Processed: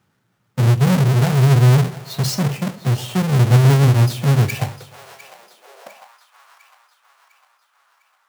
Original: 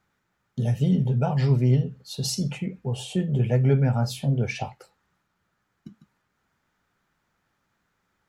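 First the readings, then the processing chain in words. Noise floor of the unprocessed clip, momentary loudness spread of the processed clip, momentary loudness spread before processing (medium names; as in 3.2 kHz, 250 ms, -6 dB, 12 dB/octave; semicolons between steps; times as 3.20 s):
-75 dBFS, 11 LU, 11 LU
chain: square wave that keeps the level; bass shelf 72 Hz -6 dB; in parallel at -10 dB: wavefolder -20 dBFS; on the sum: two-band feedback delay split 540 Hz, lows 99 ms, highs 703 ms, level -15.5 dB; high-pass sweep 110 Hz -> 1.1 kHz, 5.20–6.14 s; trim -1 dB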